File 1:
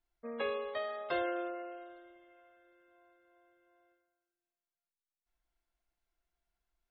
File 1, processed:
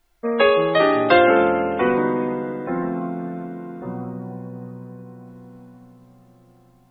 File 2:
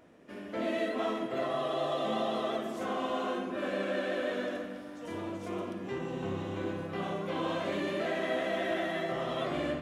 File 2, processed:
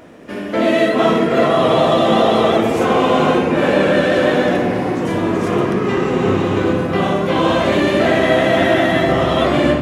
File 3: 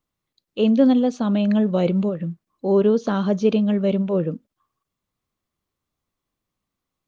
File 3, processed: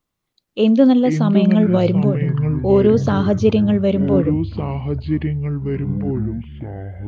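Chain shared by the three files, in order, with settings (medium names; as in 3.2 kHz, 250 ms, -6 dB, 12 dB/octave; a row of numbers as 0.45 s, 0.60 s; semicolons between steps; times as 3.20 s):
ever faster or slower copies 234 ms, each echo -6 st, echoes 3, each echo -6 dB; peak normalisation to -2 dBFS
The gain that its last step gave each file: +20.0 dB, +18.0 dB, +3.5 dB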